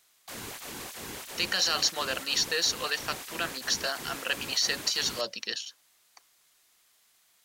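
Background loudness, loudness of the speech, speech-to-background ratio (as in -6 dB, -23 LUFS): -39.0 LUFS, -28.5 LUFS, 10.5 dB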